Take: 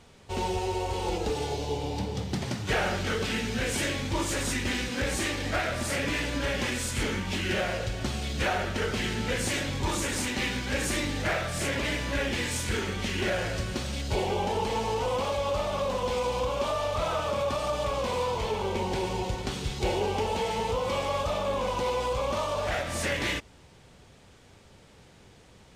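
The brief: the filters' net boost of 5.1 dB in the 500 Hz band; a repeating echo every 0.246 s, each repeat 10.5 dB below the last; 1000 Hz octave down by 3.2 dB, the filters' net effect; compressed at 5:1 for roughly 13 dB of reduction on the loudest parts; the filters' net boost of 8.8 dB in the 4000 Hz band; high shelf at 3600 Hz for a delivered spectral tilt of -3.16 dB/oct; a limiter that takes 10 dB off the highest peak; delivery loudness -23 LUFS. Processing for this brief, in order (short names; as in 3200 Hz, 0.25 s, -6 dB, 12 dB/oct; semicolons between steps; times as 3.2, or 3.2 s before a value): bell 500 Hz +7.5 dB; bell 1000 Hz -7.5 dB; high shelf 3600 Hz +5 dB; bell 4000 Hz +8.5 dB; compressor 5:1, threshold -36 dBFS; limiter -30 dBFS; feedback echo 0.246 s, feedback 30%, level -10.5 dB; gain +15 dB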